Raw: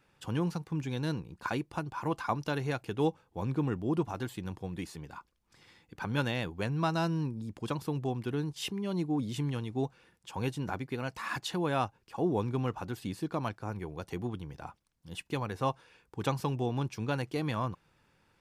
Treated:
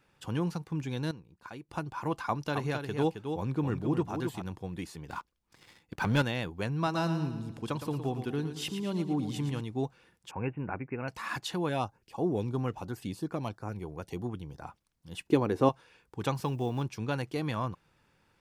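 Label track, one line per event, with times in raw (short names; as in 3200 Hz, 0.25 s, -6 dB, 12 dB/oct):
1.110000	1.690000	gain -11.5 dB
2.260000	4.420000	echo 0.267 s -6.5 dB
5.080000	6.220000	sample leveller passes 2
6.750000	9.610000	feedback echo 0.114 s, feedback 50%, level -9.5 dB
10.310000	11.080000	Chebyshev low-pass 2700 Hz, order 8
11.690000	14.640000	LFO notch saw up 3 Hz 880–4500 Hz
15.270000	15.690000	bell 340 Hz +14 dB 1.5 oct
16.350000	16.850000	block floating point 7-bit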